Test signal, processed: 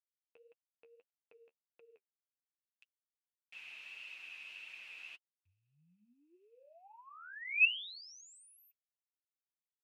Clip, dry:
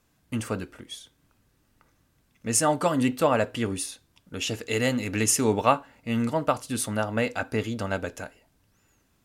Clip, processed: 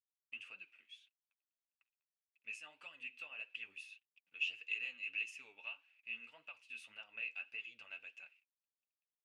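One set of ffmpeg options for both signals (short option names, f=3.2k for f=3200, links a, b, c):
-af "acompressor=threshold=-25dB:ratio=5,aeval=exprs='val(0)*gte(abs(val(0)),0.00178)':c=same,bandpass=f=2.6k:t=q:w=19:csg=0,flanger=delay=5.3:depth=8.2:regen=27:speed=1.7:shape=sinusoidal,volume=6dB"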